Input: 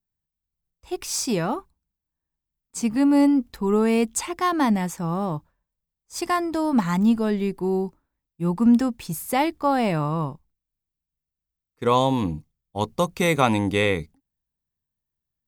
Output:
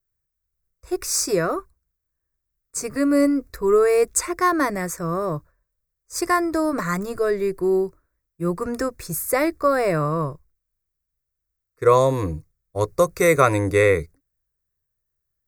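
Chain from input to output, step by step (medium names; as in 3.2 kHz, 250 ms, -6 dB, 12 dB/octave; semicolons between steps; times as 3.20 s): static phaser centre 840 Hz, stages 6; trim +7 dB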